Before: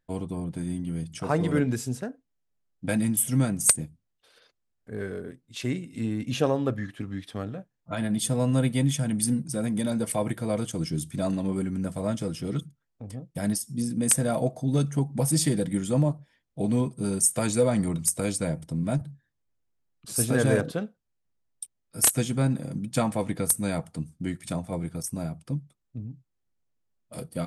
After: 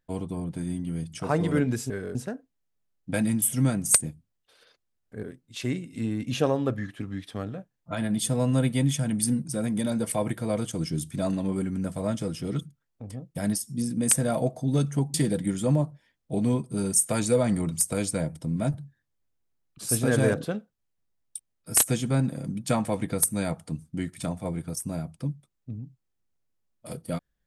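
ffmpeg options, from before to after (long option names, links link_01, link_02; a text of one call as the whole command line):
ffmpeg -i in.wav -filter_complex "[0:a]asplit=5[link_01][link_02][link_03][link_04][link_05];[link_01]atrim=end=1.902[link_06];[link_02]atrim=start=4.978:end=5.232[link_07];[link_03]atrim=start=1.898:end=4.982[link_08];[link_04]atrim=start=5.228:end=15.142[link_09];[link_05]atrim=start=15.408[link_10];[link_06][link_07]acrossfade=duration=0.004:curve1=hsin:curve2=hsin[link_11];[link_11][link_08]acrossfade=duration=0.004:curve1=hsin:curve2=hsin[link_12];[link_12][link_09]acrossfade=duration=0.004:curve1=hsin:curve2=hsin[link_13];[link_13][link_10]acrossfade=duration=0.004:curve1=hsin:curve2=hsin" out.wav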